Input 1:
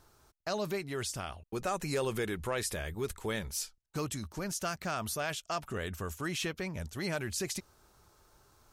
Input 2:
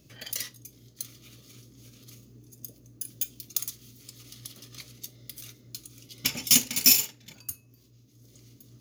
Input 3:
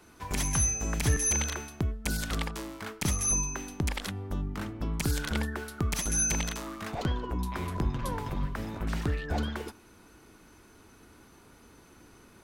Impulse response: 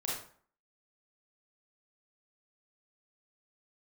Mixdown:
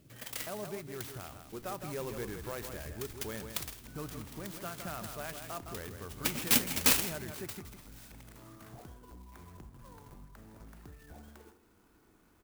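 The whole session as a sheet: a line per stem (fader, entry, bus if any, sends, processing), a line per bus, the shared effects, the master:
-7.0 dB, 0.00 s, send -22.5 dB, echo send -7 dB, send-on-delta sampling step -51 dBFS
-2.0 dB, 0.00 s, no send, echo send -15.5 dB, none
-12.0 dB, 1.80 s, send -10 dB, echo send -14 dB, compression 3:1, threshold -42 dBFS, peak gain reduction 15.5 dB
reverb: on, RT60 0.50 s, pre-delay 27 ms
echo: delay 162 ms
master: treble shelf 10 kHz -11.5 dB; sampling jitter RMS 0.064 ms

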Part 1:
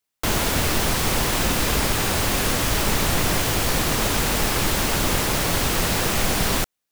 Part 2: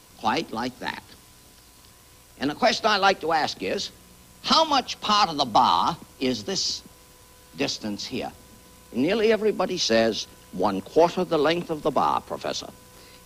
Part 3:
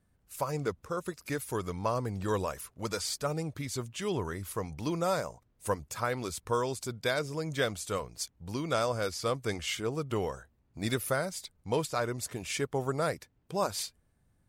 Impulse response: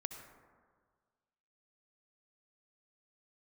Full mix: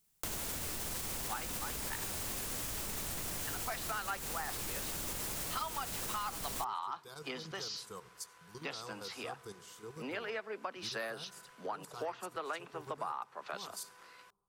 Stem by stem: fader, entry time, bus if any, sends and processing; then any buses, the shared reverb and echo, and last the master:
0.0 dB, 0.00 s, bus A, no send, peaking EQ 8 kHz +3.5 dB 0.96 oct
-0.5 dB, 1.05 s, no bus, no send, band-pass filter 1.4 kHz, Q 1.7
-11.0 dB, 0.00 s, bus A, send -11 dB, static phaser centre 400 Hz, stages 8
bus A: 0.0 dB, level held to a coarse grid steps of 16 dB; peak limiter -23.5 dBFS, peak gain reduction 5 dB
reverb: on, RT60 1.7 s, pre-delay 57 ms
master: treble shelf 7.5 kHz +9.5 dB; compression 4:1, threshold -38 dBFS, peak gain reduction 16.5 dB

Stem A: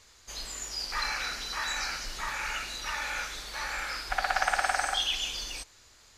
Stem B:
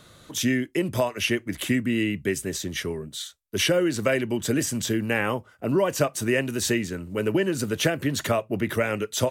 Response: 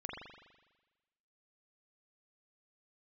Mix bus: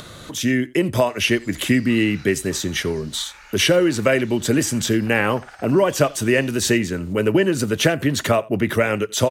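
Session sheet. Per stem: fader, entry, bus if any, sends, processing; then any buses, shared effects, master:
-9.5 dB, 0.95 s, no send, no echo send, compression 2:1, threshold -47 dBFS, peak gain reduction 14 dB
-1.0 dB, 0.00 s, no send, echo send -23 dB, upward compressor, threshold -26 dBFS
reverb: none
echo: delay 86 ms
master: treble shelf 9.5 kHz -4.5 dB; level rider gain up to 7.5 dB

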